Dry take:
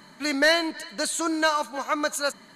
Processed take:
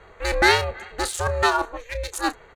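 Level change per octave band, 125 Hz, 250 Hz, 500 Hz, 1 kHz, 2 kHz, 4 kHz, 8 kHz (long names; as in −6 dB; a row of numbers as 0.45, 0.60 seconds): can't be measured, −4.0 dB, +1.5 dB, +4.5 dB, +2.0 dB, +0.5 dB, −1.5 dB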